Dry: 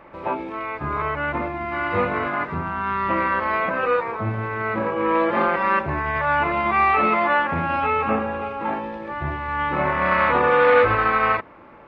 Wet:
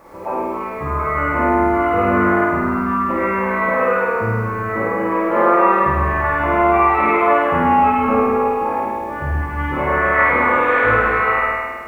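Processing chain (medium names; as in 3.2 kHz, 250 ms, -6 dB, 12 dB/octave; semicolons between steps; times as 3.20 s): resonances exaggerated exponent 1.5; bit crusher 10-bit; flutter echo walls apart 8.9 m, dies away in 1.5 s; Schroeder reverb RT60 0.91 s, combs from 28 ms, DRR -0.5 dB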